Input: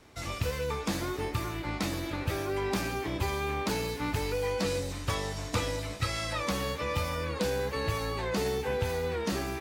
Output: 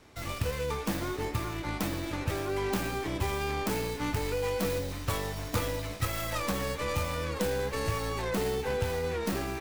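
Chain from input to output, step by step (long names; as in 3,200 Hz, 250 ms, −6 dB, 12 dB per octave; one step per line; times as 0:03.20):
stylus tracing distortion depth 0.48 ms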